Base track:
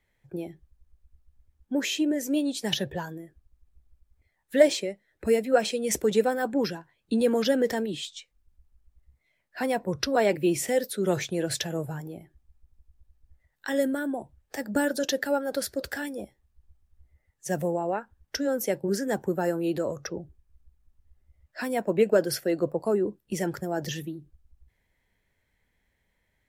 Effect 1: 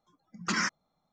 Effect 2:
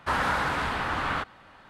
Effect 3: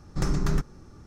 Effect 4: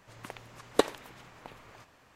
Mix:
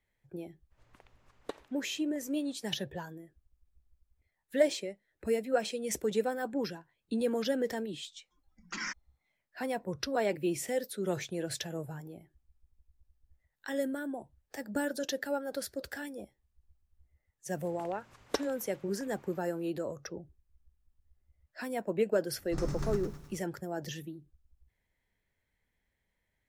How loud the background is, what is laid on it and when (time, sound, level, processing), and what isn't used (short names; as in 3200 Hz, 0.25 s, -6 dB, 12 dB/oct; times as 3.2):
base track -7.5 dB
0.7 add 4 -16.5 dB, fades 0.02 s + high shelf 4800 Hz -5.5 dB
8.24 add 1 -7.5 dB + speaker cabinet 280–7300 Hz, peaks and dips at 430 Hz -8 dB, 660 Hz -7 dB, 1200 Hz -6 dB, 2200 Hz +3 dB, 4000 Hz -3 dB
17.55 add 4 -9 dB
22.36 add 3 -10.5 dB + lo-fi delay 0.104 s, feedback 55%, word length 8-bit, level -5.5 dB
not used: 2